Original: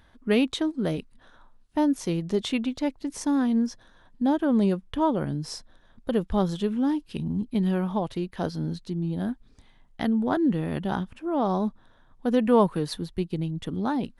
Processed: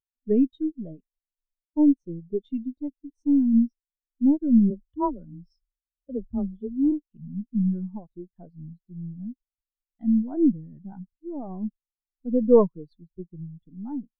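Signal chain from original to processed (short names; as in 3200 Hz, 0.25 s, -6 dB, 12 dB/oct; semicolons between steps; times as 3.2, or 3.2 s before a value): half-wave gain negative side -7 dB; 4.7–6.92 frequency shift +19 Hz; spectral expander 2.5:1; gain +5 dB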